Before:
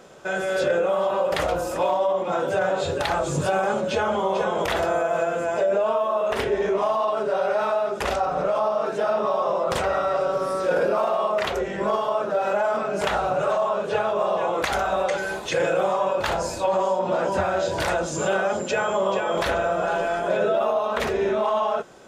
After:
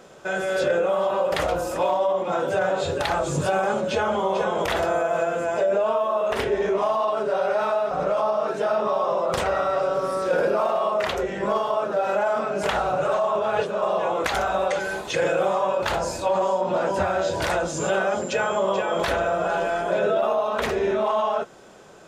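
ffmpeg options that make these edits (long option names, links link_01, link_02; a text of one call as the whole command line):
ffmpeg -i in.wav -filter_complex "[0:a]asplit=4[link_01][link_02][link_03][link_04];[link_01]atrim=end=7.912[link_05];[link_02]atrim=start=8.288:end=13.732[link_06];[link_03]atrim=start=13.728:end=14.202,asetpts=PTS-STARTPTS,areverse[link_07];[link_04]atrim=start=14.198[link_08];[link_05][link_06]acrossfade=duration=0.004:curve1=hsin:curve2=hsin[link_09];[link_09][link_07]acrossfade=duration=0.004:curve1=hsin:curve2=hsin[link_10];[link_10][link_08]acrossfade=duration=0.004:curve1=hsin:curve2=hsin" out.wav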